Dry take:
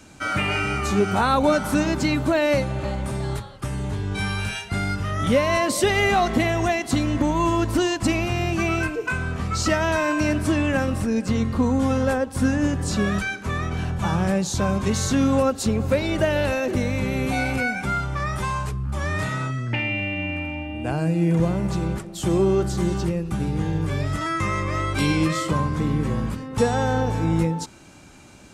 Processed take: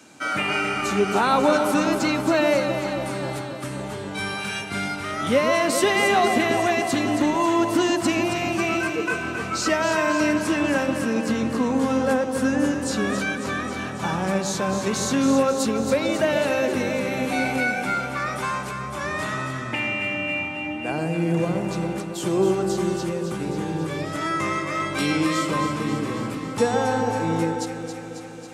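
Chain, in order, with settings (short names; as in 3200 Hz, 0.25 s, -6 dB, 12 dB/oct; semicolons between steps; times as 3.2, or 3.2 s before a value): HPF 220 Hz 12 dB/oct; on a send: echo with dull and thin repeats by turns 0.136 s, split 1000 Hz, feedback 82%, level -6 dB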